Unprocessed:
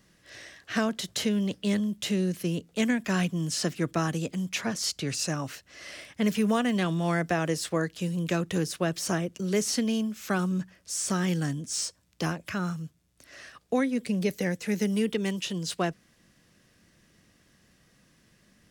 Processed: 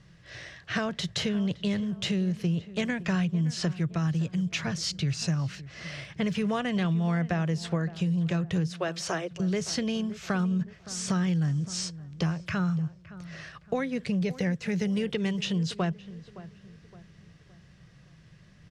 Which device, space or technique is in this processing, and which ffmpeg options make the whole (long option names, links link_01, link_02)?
jukebox: -filter_complex "[0:a]asettb=1/sr,asplit=3[link_01][link_02][link_03];[link_01]atrim=end=3.784[link_04];[link_02]atrim=start=3.78:end=5.67,asetpts=PTS-STARTPTS,afade=type=in:duration=0.004:curve=qsin,afade=type=out:start_time=1.886:duration=0.004:curve=qsin,equalizer=frequency=680:width=0.48:gain=-5[link_05];[link_03]atrim=start=5.666[link_06];[link_04][link_05]acrossfade=duration=0.004:curve1=hsin:curve2=qsin[link_07];[link_07][link_06]acrossfade=duration=0.004:curve1=qsin:curve2=hsin,asettb=1/sr,asplit=3[link_08][link_09][link_10];[link_08]atrim=end=8.714[link_11];[link_09]atrim=start=8.71:end=9.31,asetpts=PTS-STARTPTS,afade=type=in:duration=0.004:curve=qsin,afade=type=out:start_time=0.596:duration=0.004:curve=qsin,highpass=frequency=330:width=0.5412,highpass=frequency=330:width=1.3066[link_12];[link_10]atrim=start=9.306[link_13];[link_11][link_12]acrossfade=duration=0.004:curve1=hsin:curve2=qsin[link_14];[link_14][link_13]acrossfade=duration=0.004:curve1=qsin:curve2=hsin,lowpass=5000,lowshelf=frequency=190:width_type=q:width=3:gain=6,acompressor=threshold=-28dB:ratio=5,asplit=2[link_15][link_16];[link_16]adelay=566,lowpass=frequency=1700:poles=1,volume=-16dB,asplit=2[link_17][link_18];[link_18]adelay=566,lowpass=frequency=1700:poles=1,volume=0.42,asplit=2[link_19][link_20];[link_20]adelay=566,lowpass=frequency=1700:poles=1,volume=0.42,asplit=2[link_21][link_22];[link_22]adelay=566,lowpass=frequency=1700:poles=1,volume=0.42[link_23];[link_15][link_17][link_19][link_21][link_23]amix=inputs=5:normalize=0,volume=3dB"